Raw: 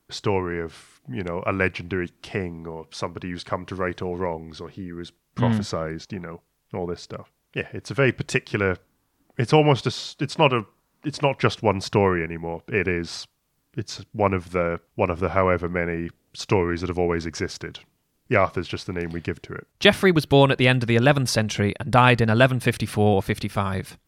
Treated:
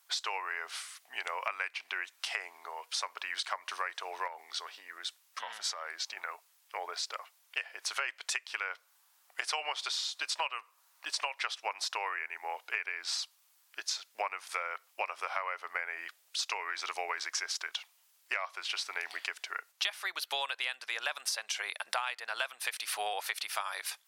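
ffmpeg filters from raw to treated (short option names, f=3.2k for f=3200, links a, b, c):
-filter_complex "[0:a]asettb=1/sr,asplit=3[a][b][c];[a]atrim=end=4.274[d];[b]atrim=start=4.27:end=6.17,asetpts=PTS-STARTPTS,afade=t=in:d=0.004:c=qsin,afade=t=out:st=1.896:d=0.004:c=qsin,acompressor=threshold=-29dB:ratio=6:attack=3.2:release=140:knee=1:detection=peak[e];[c]atrim=start=6.166[f];[d][e]acrossfade=d=0.004:c1=hsin:c2=qsin[g];[g][f]acrossfade=d=0.004:c1=qsin:c2=hsin,highpass=f=770:w=0.5412,highpass=f=770:w=1.3066,highshelf=f=2.1k:g=8,acompressor=threshold=-31dB:ratio=12"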